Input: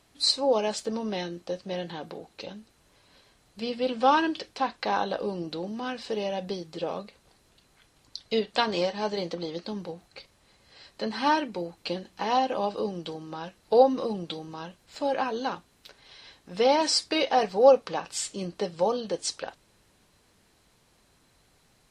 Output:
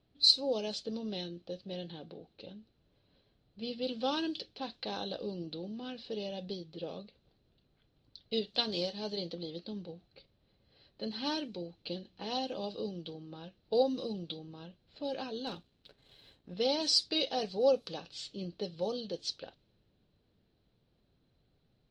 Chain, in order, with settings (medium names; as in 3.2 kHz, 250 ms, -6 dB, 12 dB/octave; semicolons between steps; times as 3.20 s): level-controlled noise filter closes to 1.8 kHz, open at -19.5 dBFS; graphic EQ 125/1000/2000/4000/8000 Hz +3/-11/-9/+11/-6 dB; 15.47–16.54 s: waveshaping leveller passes 1; trim -6.5 dB